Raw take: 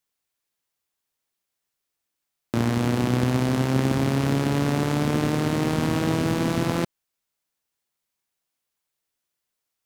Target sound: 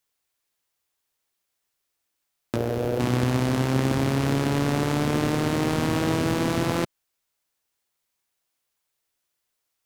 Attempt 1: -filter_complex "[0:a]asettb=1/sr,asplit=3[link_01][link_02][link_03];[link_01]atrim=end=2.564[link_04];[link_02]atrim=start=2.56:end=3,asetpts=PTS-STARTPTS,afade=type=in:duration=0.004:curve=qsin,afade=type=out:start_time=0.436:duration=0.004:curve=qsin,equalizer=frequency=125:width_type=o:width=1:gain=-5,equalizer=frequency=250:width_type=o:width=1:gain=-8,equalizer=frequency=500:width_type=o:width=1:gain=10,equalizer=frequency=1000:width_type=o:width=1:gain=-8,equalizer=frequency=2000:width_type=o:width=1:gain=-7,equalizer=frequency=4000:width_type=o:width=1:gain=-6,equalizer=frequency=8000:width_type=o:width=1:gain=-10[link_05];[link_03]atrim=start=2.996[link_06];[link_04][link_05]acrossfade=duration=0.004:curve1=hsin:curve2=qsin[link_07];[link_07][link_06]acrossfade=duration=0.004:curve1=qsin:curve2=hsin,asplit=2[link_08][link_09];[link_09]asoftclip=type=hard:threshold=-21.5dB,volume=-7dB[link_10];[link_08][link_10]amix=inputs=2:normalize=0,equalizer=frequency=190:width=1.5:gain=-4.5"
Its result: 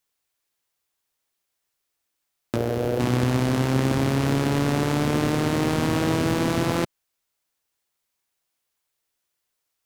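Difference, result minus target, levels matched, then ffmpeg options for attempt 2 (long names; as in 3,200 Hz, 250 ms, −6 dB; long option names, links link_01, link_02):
hard clipping: distortion −5 dB
-filter_complex "[0:a]asettb=1/sr,asplit=3[link_01][link_02][link_03];[link_01]atrim=end=2.564[link_04];[link_02]atrim=start=2.56:end=3,asetpts=PTS-STARTPTS,afade=type=in:duration=0.004:curve=qsin,afade=type=out:start_time=0.436:duration=0.004:curve=qsin,equalizer=frequency=125:width_type=o:width=1:gain=-5,equalizer=frequency=250:width_type=o:width=1:gain=-8,equalizer=frequency=500:width_type=o:width=1:gain=10,equalizer=frequency=1000:width_type=o:width=1:gain=-8,equalizer=frequency=2000:width_type=o:width=1:gain=-7,equalizer=frequency=4000:width_type=o:width=1:gain=-6,equalizer=frequency=8000:width_type=o:width=1:gain=-10[link_05];[link_03]atrim=start=2.996[link_06];[link_04][link_05]acrossfade=duration=0.004:curve1=hsin:curve2=qsin[link_07];[link_07][link_06]acrossfade=duration=0.004:curve1=qsin:curve2=hsin,asplit=2[link_08][link_09];[link_09]asoftclip=type=hard:threshold=-30.5dB,volume=-7dB[link_10];[link_08][link_10]amix=inputs=2:normalize=0,equalizer=frequency=190:width=1.5:gain=-4.5"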